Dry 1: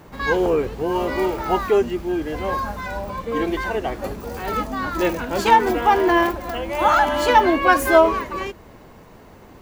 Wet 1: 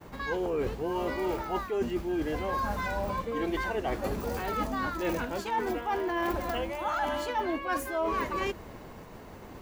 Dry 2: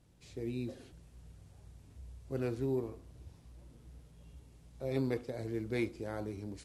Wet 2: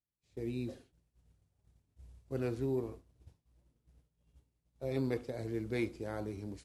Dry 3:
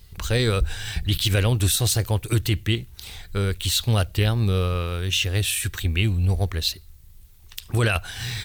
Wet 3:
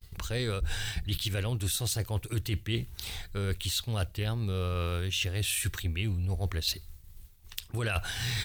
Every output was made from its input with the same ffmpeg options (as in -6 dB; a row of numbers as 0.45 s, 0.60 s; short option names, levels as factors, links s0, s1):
-af "areverse,acompressor=threshold=0.0447:ratio=16,areverse,agate=range=0.0224:threshold=0.00708:ratio=3:detection=peak"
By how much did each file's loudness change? -11.5 LU, -0.5 LU, -9.0 LU